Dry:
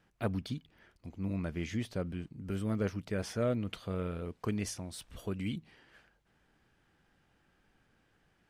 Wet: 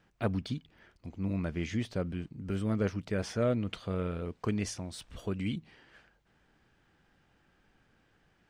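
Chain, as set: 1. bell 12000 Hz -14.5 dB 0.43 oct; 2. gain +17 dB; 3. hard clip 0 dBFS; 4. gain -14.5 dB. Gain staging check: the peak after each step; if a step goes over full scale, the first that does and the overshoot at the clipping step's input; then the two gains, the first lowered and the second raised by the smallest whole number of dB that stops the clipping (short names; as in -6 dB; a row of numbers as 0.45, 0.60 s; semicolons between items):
-21.5, -4.5, -4.5, -19.0 dBFS; no overload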